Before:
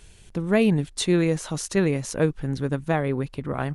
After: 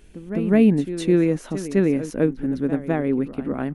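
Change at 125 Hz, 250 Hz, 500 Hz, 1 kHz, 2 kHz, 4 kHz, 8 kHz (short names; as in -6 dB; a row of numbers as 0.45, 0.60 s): -1.0, +5.0, +2.0, -3.0, -2.5, -7.5, -8.5 dB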